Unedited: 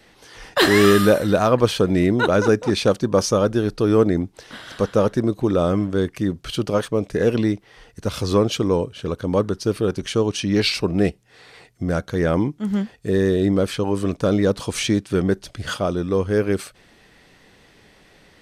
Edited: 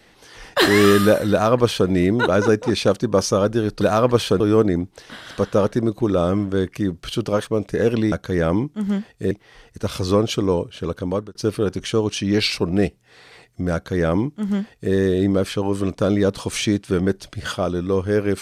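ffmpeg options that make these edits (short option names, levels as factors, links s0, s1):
-filter_complex "[0:a]asplit=6[s0][s1][s2][s3][s4][s5];[s0]atrim=end=3.812[s6];[s1]atrim=start=1.298:end=1.892[s7];[s2]atrim=start=3.808:end=7.532[s8];[s3]atrim=start=11.958:end=13.152[s9];[s4]atrim=start=7.528:end=9.57,asetpts=PTS-STARTPTS,afade=t=out:st=1.592:d=0.45:c=qsin[s10];[s5]atrim=start=9.57,asetpts=PTS-STARTPTS,afade=t=in:d=0.004:c=hsin[s11];[s6][s7]acrossfade=d=0.004:c1=hsin:c2=hsin[s12];[s12][s8]acrossfade=d=0.004:c1=hsin:c2=hsin[s13];[s13][s9]acrossfade=d=0.004:c1=hsin:c2=hsin[s14];[s10][s11]concat=n=2:v=0:a=1[s15];[s14][s15]acrossfade=d=0.004:c1=hsin:c2=hsin"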